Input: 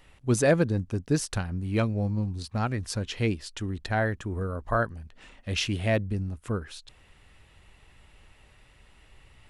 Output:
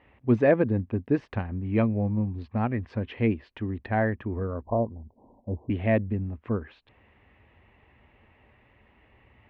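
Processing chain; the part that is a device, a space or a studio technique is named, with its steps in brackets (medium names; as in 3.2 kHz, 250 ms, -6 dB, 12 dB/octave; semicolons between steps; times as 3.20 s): bass cabinet (cabinet simulation 80–2300 Hz, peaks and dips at 160 Hz -9 dB, 230 Hz +5 dB, 1.4 kHz -8 dB); 4.63–5.70 s: steep low-pass 1 kHz 96 dB/octave; trim +2 dB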